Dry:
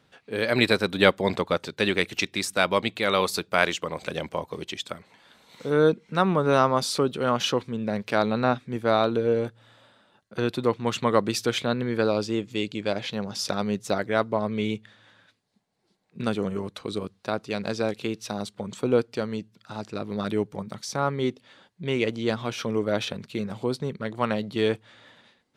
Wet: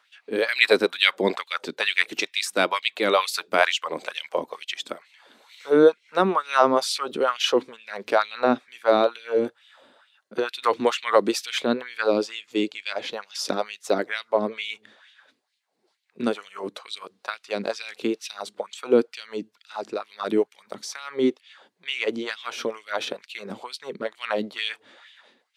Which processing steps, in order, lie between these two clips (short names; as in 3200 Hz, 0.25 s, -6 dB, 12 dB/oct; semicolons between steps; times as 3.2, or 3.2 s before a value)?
LFO high-pass sine 2.2 Hz 260–2900 Hz; 10.62–11.34 three-band squash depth 70%